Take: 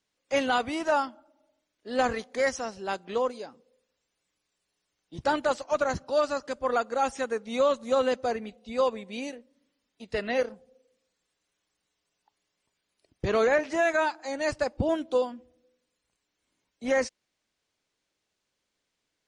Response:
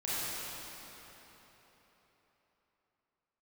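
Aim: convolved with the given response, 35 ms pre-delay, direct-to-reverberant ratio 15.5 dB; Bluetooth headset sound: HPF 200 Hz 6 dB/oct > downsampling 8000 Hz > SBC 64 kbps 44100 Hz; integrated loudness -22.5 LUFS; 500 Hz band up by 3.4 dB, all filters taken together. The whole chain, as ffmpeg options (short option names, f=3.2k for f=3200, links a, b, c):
-filter_complex "[0:a]equalizer=f=500:t=o:g=4.5,asplit=2[a][b];[1:a]atrim=start_sample=2205,adelay=35[c];[b][c]afir=irnorm=-1:irlink=0,volume=-22.5dB[d];[a][d]amix=inputs=2:normalize=0,highpass=f=200:p=1,aresample=8000,aresample=44100,volume=3.5dB" -ar 44100 -c:a sbc -b:a 64k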